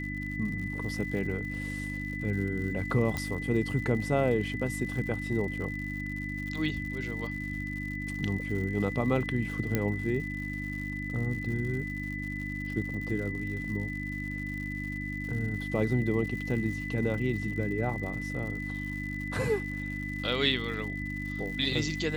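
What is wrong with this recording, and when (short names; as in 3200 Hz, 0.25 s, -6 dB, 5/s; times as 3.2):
crackle 140/s -39 dBFS
hum 50 Hz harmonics 6 -37 dBFS
tone 2000 Hz -37 dBFS
3.17 pop -18 dBFS
9.75 pop -13 dBFS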